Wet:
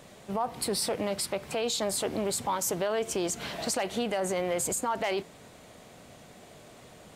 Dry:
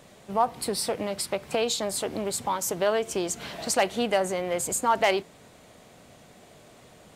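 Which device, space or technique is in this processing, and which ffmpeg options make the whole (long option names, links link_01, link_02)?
stacked limiters: -af "alimiter=limit=-17.5dB:level=0:latency=1:release=109,alimiter=limit=-21.5dB:level=0:latency=1:release=13,volume=1dB"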